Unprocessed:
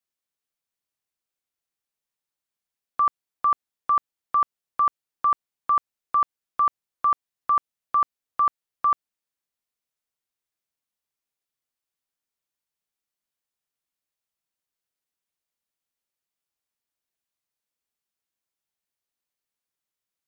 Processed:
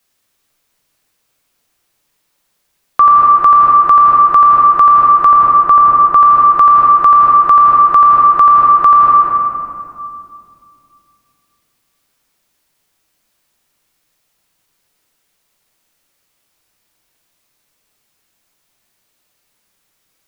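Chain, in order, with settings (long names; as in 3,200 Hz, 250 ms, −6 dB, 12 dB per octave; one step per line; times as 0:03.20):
0:05.25–0:06.16: high-shelf EQ 2,100 Hz −9 dB
convolution reverb RT60 2.4 s, pre-delay 7 ms, DRR 1 dB
boost into a limiter +23 dB
level −1 dB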